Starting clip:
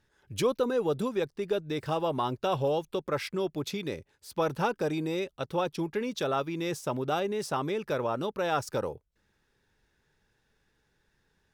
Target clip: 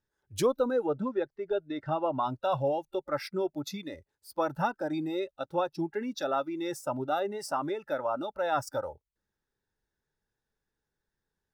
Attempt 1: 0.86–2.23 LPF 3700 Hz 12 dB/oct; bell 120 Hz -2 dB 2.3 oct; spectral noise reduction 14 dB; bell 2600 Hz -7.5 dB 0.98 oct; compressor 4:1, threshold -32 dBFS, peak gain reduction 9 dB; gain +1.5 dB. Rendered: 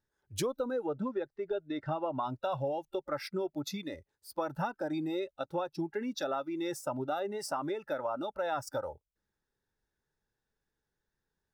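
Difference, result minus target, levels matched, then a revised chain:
compressor: peak gain reduction +9 dB
0.86–2.23 LPF 3700 Hz 12 dB/oct; bell 120 Hz -2 dB 2.3 oct; spectral noise reduction 14 dB; bell 2600 Hz -7.5 dB 0.98 oct; gain +1.5 dB

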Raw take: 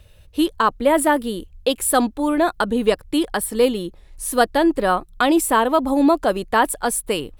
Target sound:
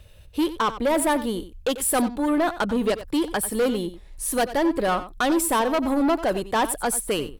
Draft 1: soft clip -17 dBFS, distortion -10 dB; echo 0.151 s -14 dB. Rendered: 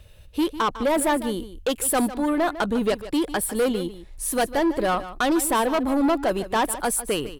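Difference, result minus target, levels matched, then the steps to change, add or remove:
echo 60 ms late
change: echo 91 ms -14 dB

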